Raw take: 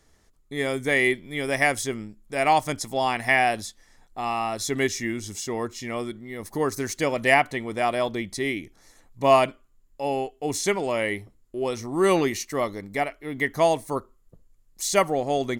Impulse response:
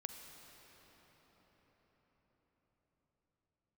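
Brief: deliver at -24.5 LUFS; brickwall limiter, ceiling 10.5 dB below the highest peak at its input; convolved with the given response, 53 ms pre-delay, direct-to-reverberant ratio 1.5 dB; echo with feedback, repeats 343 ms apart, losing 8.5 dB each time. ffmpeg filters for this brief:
-filter_complex "[0:a]alimiter=limit=0.168:level=0:latency=1,aecho=1:1:343|686|1029|1372:0.376|0.143|0.0543|0.0206,asplit=2[s0][s1];[1:a]atrim=start_sample=2205,adelay=53[s2];[s1][s2]afir=irnorm=-1:irlink=0,volume=1.12[s3];[s0][s3]amix=inputs=2:normalize=0,volume=1.12"

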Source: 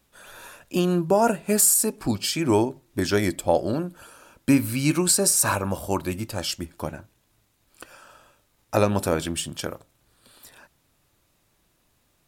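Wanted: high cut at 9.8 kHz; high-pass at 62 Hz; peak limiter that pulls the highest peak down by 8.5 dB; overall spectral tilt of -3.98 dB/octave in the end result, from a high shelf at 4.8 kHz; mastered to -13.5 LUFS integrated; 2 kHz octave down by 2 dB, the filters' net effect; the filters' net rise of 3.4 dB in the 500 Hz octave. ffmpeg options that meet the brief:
-af "highpass=62,lowpass=9800,equalizer=f=500:t=o:g=4.5,equalizer=f=2000:t=o:g=-4,highshelf=f=4800:g=5,volume=3.55,alimiter=limit=0.891:level=0:latency=1"

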